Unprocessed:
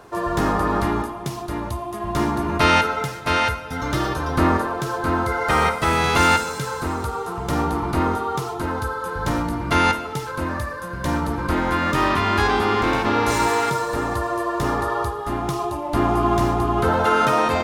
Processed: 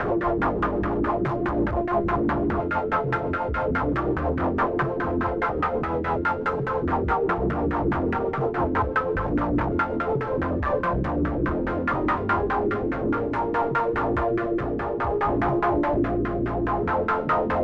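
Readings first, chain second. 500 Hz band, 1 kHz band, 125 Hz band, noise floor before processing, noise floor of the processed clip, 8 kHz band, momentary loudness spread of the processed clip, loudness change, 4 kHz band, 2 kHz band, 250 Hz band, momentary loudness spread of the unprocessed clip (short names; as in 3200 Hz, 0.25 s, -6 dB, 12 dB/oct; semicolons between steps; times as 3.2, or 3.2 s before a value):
0.0 dB, -4.5 dB, -3.0 dB, -31 dBFS, -28 dBFS, under -25 dB, 2 LU, -3.0 dB, -18.0 dB, -6.0 dB, -1.0 dB, 9 LU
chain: infinite clipping; LFO low-pass saw down 4.8 Hz 270–1700 Hz; rotary speaker horn 6 Hz, later 0.6 Hz, at 9.95; gain -1.5 dB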